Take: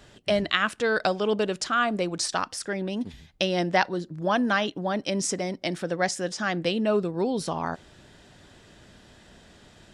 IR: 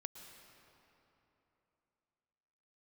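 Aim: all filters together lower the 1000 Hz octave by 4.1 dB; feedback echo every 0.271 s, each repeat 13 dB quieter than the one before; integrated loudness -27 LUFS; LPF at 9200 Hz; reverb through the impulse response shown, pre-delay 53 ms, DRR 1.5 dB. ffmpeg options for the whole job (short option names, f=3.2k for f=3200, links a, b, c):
-filter_complex "[0:a]lowpass=9.2k,equalizer=f=1k:t=o:g=-6,aecho=1:1:271|542|813:0.224|0.0493|0.0108,asplit=2[a][b];[1:a]atrim=start_sample=2205,adelay=53[c];[b][c]afir=irnorm=-1:irlink=0,volume=2.5dB[d];[a][d]amix=inputs=2:normalize=0,volume=-1.5dB"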